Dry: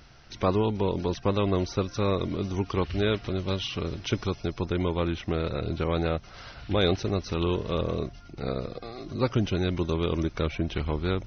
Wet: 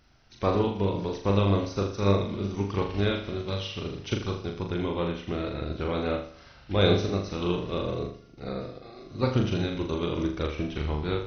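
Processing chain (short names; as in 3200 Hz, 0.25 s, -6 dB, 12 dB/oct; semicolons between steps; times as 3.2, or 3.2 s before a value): flutter echo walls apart 6.9 m, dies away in 0.68 s; upward expander 1.5:1, over -39 dBFS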